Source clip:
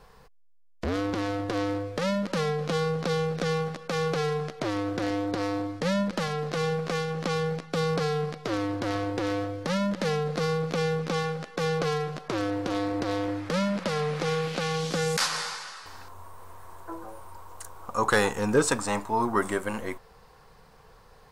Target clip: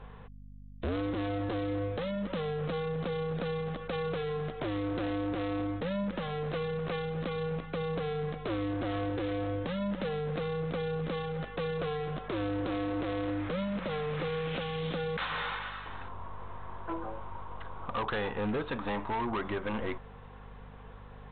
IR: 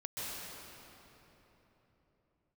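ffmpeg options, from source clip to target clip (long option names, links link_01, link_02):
-af "acompressor=threshold=-29dB:ratio=5,aresample=8000,asoftclip=type=hard:threshold=-31.5dB,aresample=44100,aeval=exprs='val(0)+0.00282*(sin(2*PI*50*n/s)+sin(2*PI*2*50*n/s)/2+sin(2*PI*3*50*n/s)/3+sin(2*PI*4*50*n/s)/4+sin(2*PI*5*50*n/s)/5)':channel_layout=same,volume=2.5dB"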